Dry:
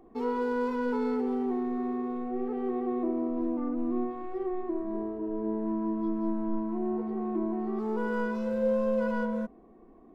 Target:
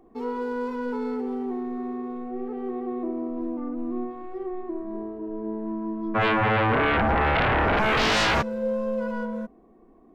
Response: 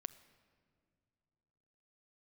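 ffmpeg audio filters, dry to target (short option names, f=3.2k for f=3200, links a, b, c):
-filter_complex "[0:a]asplit=3[a][b][c];[a]afade=t=out:st=6.14:d=0.02[d];[b]aeval=exprs='0.119*sin(PI/2*7.94*val(0)/0.119)':c=same,afade=t=in:st=6.14:d=0.02,afade=t=out:st=8.41:d=0.02[e];[c]afade=t=in:st=8.41:d=0.02[f];[d][e][f]amix=inputs=3:normalize=0"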